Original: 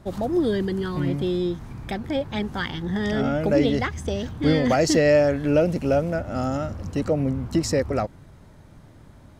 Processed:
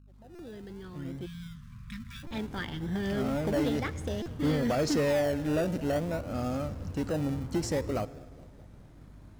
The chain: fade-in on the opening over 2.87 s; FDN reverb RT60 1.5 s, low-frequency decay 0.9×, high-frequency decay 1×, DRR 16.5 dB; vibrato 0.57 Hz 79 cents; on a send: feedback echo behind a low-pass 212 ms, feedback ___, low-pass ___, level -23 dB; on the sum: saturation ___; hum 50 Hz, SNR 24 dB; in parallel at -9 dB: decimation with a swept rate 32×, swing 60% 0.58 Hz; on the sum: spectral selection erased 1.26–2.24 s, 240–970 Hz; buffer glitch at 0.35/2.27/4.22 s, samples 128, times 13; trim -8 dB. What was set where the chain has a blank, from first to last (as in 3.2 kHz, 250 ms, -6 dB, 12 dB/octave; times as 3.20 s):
62%, 830 Hz, -15 dBFS